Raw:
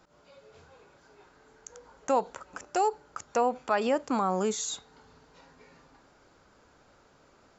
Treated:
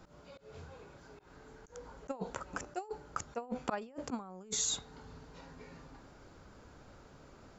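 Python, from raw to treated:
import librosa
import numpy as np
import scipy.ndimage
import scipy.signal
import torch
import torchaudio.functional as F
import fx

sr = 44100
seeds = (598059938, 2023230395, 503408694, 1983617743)

y = fx.low_shelf(x, sr, hz=260.0, db=10.5)
y = fx.auto_swell(y, sr, attack_ms=132.0)
y = fx.over_compress(y, sr, threshold_db=-33.0, ratio=-0.5)
y = y * librosa.db_to_amplitude(-5.0)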